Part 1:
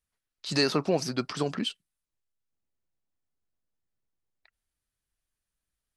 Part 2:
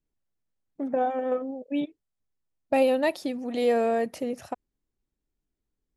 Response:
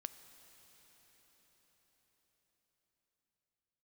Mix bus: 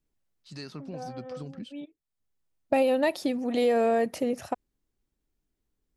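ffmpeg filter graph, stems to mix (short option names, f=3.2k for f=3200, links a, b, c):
-filter_complex "[0:a]agate=range=-15dB:threshold=-45dB:ratio=16:detection=peak,asubboost=boost=11.5:cutoff=240,volume=-17.5dB,asplit=2[a][b];[1:a]volume=3dB[c];[b]apad=whole_len=262959[d];[c][d]sidechaincompress=threshold=-54dB:ratio=20:attack=44:release=602[e];[a][e]amix=inputs=2:normalize=0,acompressor=threshold=-20dB:ratio=6"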